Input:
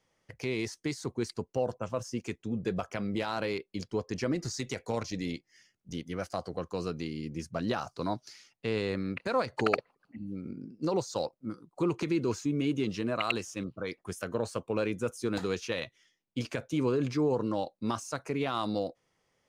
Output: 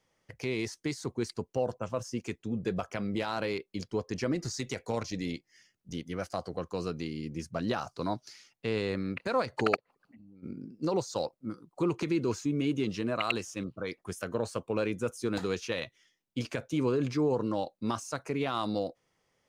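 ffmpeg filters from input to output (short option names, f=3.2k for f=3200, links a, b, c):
-filter_complex "[0:a]asplit=3[a][b][c];[a]afade=t=out:st=9.75:d=0.02[d];[b]acompressor=threshold=-51dB:ratio=12:attack=3.2:release=140:knee=1:detection=peak,afade=t=in:st=9.75:d=0.02,afade=t=out:st=10.42:d=0.02[e];[c]afade=t=in:st=10.42:d=0.02[f];[d][e][f]amix=inputs=3:normalize=0"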